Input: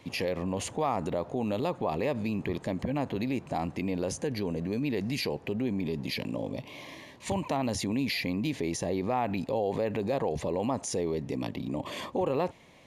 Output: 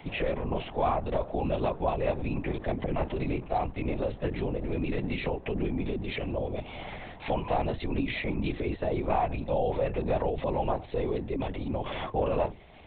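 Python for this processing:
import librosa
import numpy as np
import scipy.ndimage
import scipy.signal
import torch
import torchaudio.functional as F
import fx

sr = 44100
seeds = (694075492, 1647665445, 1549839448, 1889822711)

y = fx.peak_eq(x, sr, hz=700.0, db=5.5, octaves=0.6)
y = fx.hum_notches(y, sr, base_hz=60, count=7)
y = fx.lpc_vocoder(y, sr, seeds[0], excitation='whisper', order=10)
y = fx.band_squash(y, sr, depth_pct=40)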